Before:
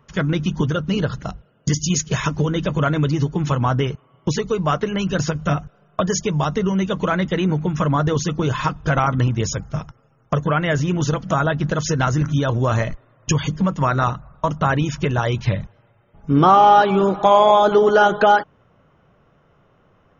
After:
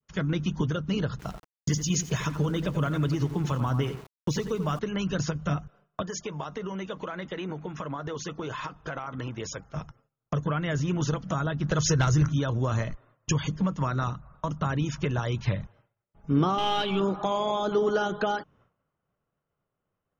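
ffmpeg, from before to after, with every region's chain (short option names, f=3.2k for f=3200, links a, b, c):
-filter_complex "[0:a]asettb=1/sr,asplit=3[a][b][c];[a]atrim=end=1.194[d];[b]atrim=start=1.19:end=4.79,asetpts=PTS-STARTPTS,afade=t=in:d=0.004:c=qsin,afade=t=out:st=3.596:d=0.004:c=qsin,asplit=2[e][f];[f]adelay=87,lowpass=f=2.2k:p=1,volume=-10dB,asplit=2[g][h];[h]adelay=87,lowpass=f=2.2k:p=1,volume=0.32,asplit=2[i][j];[j]adelay=87,lowpass=f=2.2k:p=1,volume=0.32,asplit=2[k][l];[l]adelay=87,lowpass=f=2.2k:p=1,volume=0.32[m];[e][g][i][k][m]amix=inputs=5:normalize=0,atrim=end_sample=158760,aeval=exprs='val(0)*gte(abs(val(0)),0.0141)':c=same[n];[c]atrim=start=4.786[o];[d][n]acrossfade=d=0.004:c1=hsin:c2=qsin[p];[p][o]acrossfade=d=0.004:c1=qsin:c2=hsin,asettb=1/sr,asplit=3[q][r][s];[q]atrim=end=6.024[t];[r]atrim=start=6.02:end=9.76,asetpts=PTS-STARTPTS,afade=t=in:d=0.004:c=qsin,afade=t=out:st=3.736:d=0.004:c=qsin,bass=f=250:g=-11,treble=f=4k:g=-5,acompressor=threshold=-22dB:ratio=6:attack=3.2:release=140:knee=1:detection=peak[u];[s]atrim=start=9.756[v];[t][u]acrossfade=d=0.004:c1=hsin:c2=qsin[w];[w][v]acrossfade=d=0.004:c1=qsin:c2=hsin,asettb=1/sr,asplit=3[x][y][z];[x]atrim=end=11.704[aa];[y]atrim=start=11.7:end=12.29,asetpts=PTS-STARTPTS,afade=t=in:d=0.004:c=qsin,afade=t=out:st=0.586:d=0.004:c=qsin,equalizer=f=240:t=o:w=0.6:g=-11,acontrast=87[ab];[z]atrim=start=12.286[ac];[aa][ab]acrossfade=d=0.004:c1=hsin:c2=qsin[ad];[ad][ac]acrossfade=d=0.004:c1=qsin:c2=hsin,asettb=1/sr,asplit=3[ae][af][ag];[ae]atrim=end=16.584[ah];[af]atrim=start=16.58:end=17,asetpts=PTS-STARTPTS,afade=t=in:d=0.004:c=qsin,afade=t=out:st=0.416:d=0.004:c=qsin,aeval=exprs='if(lt(val(0),0),0.708*val(0),val(0))':c=same,equalizer=f=3k:w=1.7:g=13.5[ai];[ag]atrim=start=16.996[aj];[ah][ai]acrossfade=d=0.004:c1=hsin:c2=qsin[ak];[ak][aj]acrossfade=d=0.004:c1=qsin:c2=hsin,agate=range=-33dB:threshold=-44dB:ratio=3:detection=peak,adynamicequalizer=threshold=0.0447:dfrequency=1200:dqfactor=1.3:tfrequency=1200:tqfactor=1.3:attack=5:release=100:ratio=0.375:range=3:mode=boostabove:tftype=bell,acrossover=split=410|3000[al][am][an];[am]acompressor=threshold=-27dB:ratio=3[ao];[al][ao][an]amix=inputs=3:normalize=0,volume=-7dB"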